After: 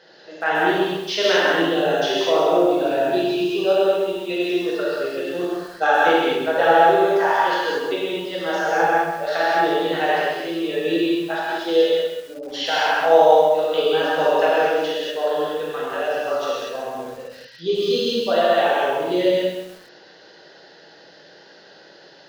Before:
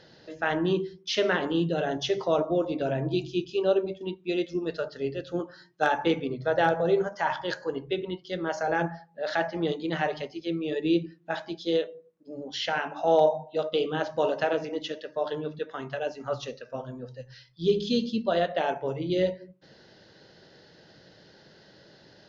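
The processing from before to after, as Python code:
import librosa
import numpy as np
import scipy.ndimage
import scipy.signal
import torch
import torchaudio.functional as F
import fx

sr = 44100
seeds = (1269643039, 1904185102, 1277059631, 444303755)

y = scipy.signal.sosfilt(scipy.signal.bessel(2, 450.0, 'highpass', norm='mag', fs=sr, output='sos'), x)
y = fx.high_shelf(y, sr, hz=3100.0, db=-4.5)
y = y + 10.0 ** (-15.5 / 20.0) * np.pad(y, (int(187 * sr / 1000.0), 0))[:len(y)]
y = fx.rev_gated(y, sr, seeds[0], gate_ms=270, shape='flat', drr_db=-7.5)
y = fx.echo_crushed(y, sr, ms=132, feedback_pct=35, bits=7, wet_db=-8.0)
y = F.gain(torch.from_numpy(y), 3.0).numpy()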